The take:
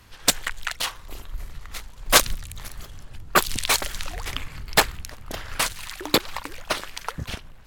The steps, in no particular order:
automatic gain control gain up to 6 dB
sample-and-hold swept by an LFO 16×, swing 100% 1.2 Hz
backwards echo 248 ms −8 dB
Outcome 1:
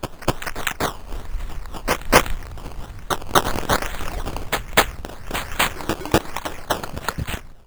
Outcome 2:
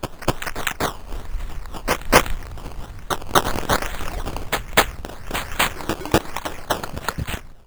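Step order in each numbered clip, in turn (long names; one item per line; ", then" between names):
sample-and-hold swept by an LFO, then backwards echo, then automatic gain control
sample-and-hold swept by an LFO, then automatic gain control, then backwards echo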